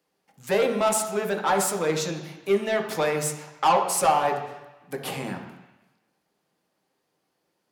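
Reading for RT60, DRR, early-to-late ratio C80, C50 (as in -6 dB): 1.0 s, 2.0 dB, 9.0 dB, 6.5 dB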